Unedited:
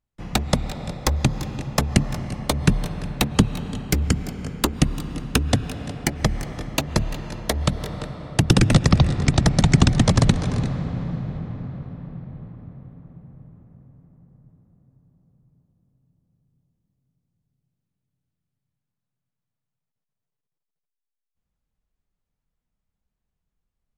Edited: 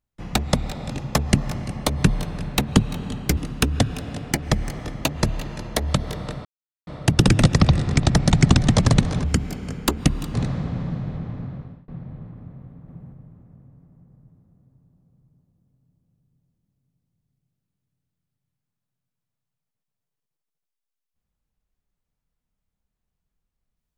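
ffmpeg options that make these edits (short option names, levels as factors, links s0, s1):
-filter_complex "[0:a]asplit=9[s0][s1][s2][s3][s4][s5][s6][s7][s8];[s0]atrim=end=0.902[s9];[s1]atrim=start=1.528:end=4.002[s10];[s2]atrim=start=5.098:end=8.18,asetpts=PTS-STARTPTS,afade=t=out:st=3.078:d=0.004:c=hsin,apad=pad_dur=0.42[s11];[s3]atrim=start=8.18:end=10.552,asetpts=PTS-STARTPTS,afade=t=in:d=0.004:c=hsin[s12];[s4]atrim=start=3.998:end=5.102[s13];[s5]atrim=start=10.548:end=12.09,asetpts=PTS-STARTPTS,afade=t=out:st=1.092:d=0.45:c=qsin[s14];[s6]atrim=start=12.09:end=13.092,asetpts=PTS-STARTPTS,afade=t=in:d=0.004:c=hsin[s15];[s7]atrim=start=13.088:end=13.342,asetpts=PTS-STARTPTS,volume=1.41[s16];[s8]atrim=start=13.338[s17];[s9][s10]acrossfade=d=0.004:c1=hsin:c2=hsin[s18];[s11][s12]concat=n=2:v=0:a=1[s19];[s18][s19]acrossfade=d=0.004:c1=hsin:c2=hsin[s20];[s20][s13]acrossfade=d=0.004:c1=hsin:c2=hsin[s21];[s14][s15]concat=n=2:v=0:a=1[s22];[s21][s22]acrossfade=d=0.004:c1=hsin:c2=hsin[s23];[s23][s16]acrossfade=d=0.004:c1=hsin:c2=hsin[s24];[s24][s17]acrossfade=d=0.004:c1=hsin:c2=hsin"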